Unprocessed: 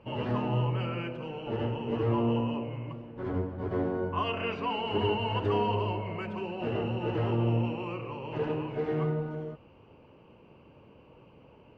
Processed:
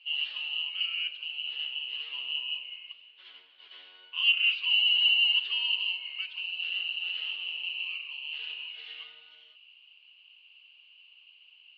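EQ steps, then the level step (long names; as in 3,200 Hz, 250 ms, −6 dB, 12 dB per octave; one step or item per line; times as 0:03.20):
high-pass with resonance 2,900 Hz, resonance Q 8
low-pass with resonance 4,100 Hz, resonance Q 3.8
−5.5 dB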